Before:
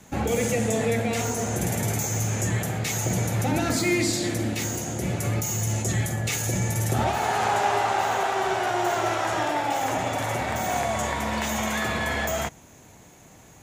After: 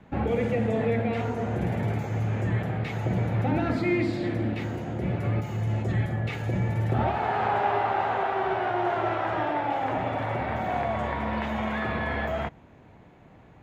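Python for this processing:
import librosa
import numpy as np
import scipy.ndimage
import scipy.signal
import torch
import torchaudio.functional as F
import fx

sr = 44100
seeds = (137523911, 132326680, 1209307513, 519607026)

y = fx.air_absorb(x, sr, metres=440.0)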